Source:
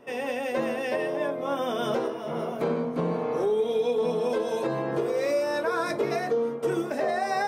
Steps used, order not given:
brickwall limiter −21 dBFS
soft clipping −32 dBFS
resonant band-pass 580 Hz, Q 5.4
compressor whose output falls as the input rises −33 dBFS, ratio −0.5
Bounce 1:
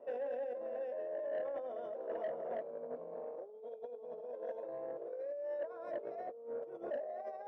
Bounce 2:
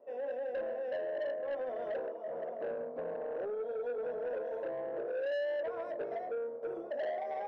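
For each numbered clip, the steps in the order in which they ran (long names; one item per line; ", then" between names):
brickwall limiter, then compressor whose output falls as the input rises, then resonant band-pass, then soft clipping
resonant band-pass, then brickwall limiter, then soft clipping, then compressor whose output falls as the input rises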